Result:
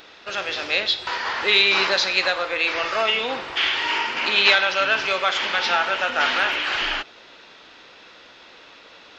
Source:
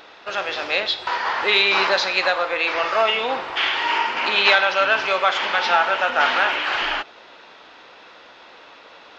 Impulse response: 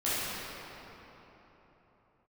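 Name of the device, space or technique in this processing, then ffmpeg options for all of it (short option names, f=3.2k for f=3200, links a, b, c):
smiley-face EQ: -af "lowshelf=f=140:g=4.5,equalizer=f=850:t=o:w=1.5:g=-6,highshelf=f=5.3k:g=6"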